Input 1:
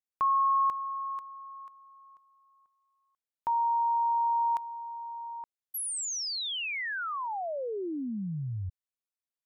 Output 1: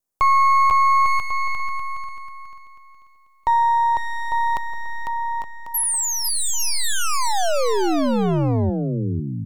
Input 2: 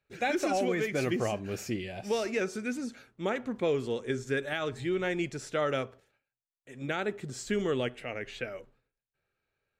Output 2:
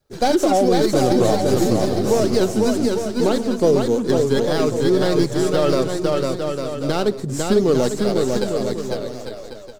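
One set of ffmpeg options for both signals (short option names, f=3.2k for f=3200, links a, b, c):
-filter_complex "[0:a]adynamicequalizer=threshold=0.00708:dfrequency=910:dqfactor=6.7:tfrequency=910:tqfactor=6.7:attack=5:release=100:ratio=0.375:range=2:mode=cutabove:tftype=bell,acrossover=split=130|1300|5300[a][b][c][d];[c]aeval=exprs='abs(val(0))':c=same[e];[a][b][e][d]amix=inputs=4:normalize=0,aecho=1:1:500|850|1095|1266|1387:0.631|0.398|0.251|0.158|0.1,alimiter=level_in=18.5dB:limit=-1dB:release=50:level=0:latency=1,volume=-5.5dB"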